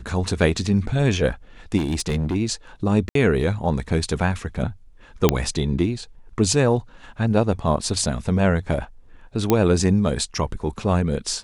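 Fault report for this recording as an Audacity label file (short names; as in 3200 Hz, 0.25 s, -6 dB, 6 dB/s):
1.770000	2.360000	clipped -19 dBFS
3.090000	3.150000	gap 63 ms
5.290000	5.290000	pop -1 dBFS
9.500000	9.500000	pop -4 dBFS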